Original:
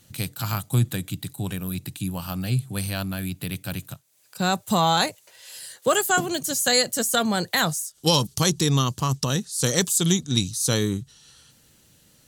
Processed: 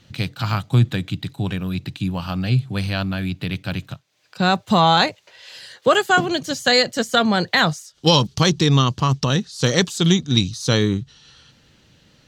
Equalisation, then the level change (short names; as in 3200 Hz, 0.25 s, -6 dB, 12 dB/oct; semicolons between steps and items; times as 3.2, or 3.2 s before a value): air absorption 230 m; high shelf 2500 Hz +8 dB; +5.5 dB